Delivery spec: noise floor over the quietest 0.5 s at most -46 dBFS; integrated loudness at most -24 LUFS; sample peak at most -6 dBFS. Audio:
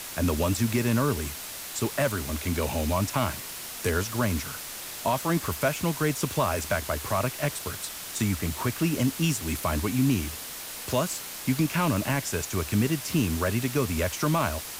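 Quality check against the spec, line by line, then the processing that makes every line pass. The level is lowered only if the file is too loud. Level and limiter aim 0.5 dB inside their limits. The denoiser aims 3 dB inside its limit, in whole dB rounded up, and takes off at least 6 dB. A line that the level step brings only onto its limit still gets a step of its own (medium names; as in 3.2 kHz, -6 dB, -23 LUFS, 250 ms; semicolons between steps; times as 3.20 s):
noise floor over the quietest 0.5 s -38 dBFS: fail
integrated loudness -27.5 LUFS: pass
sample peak -13.5 dBFS: pass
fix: noise reduction 11 dB, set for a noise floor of -38 dBFS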